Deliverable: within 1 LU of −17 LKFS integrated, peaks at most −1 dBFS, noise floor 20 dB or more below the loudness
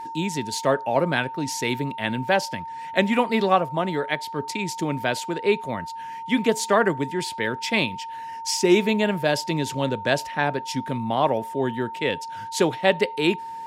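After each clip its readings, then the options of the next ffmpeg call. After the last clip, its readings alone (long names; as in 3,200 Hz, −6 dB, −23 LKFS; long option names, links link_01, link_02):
interfering tone 910 Hz; level of the tone −32 dBFS; integrated loudness −24.0 LKFS; sample peak −5.0 dBFS; target loudness −17.0 LKFS
→ -af "bandreject=frequency=910:width=30"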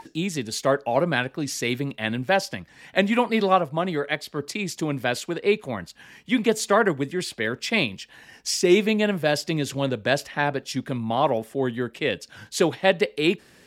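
interfering tone none found; integrated loudness −24.0 LKFS; sample peak −4.5 dBFS; target loudness −17.0 LKFS
→ -af "volume=7dB,alimiter=limit=-1dB:level=0:latency=1"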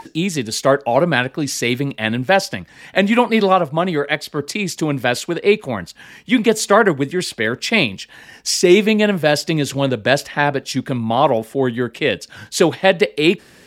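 integrated loudness −17.5 LKFS; sample peak −1.0 dBFS; background noise floor −48 dBFS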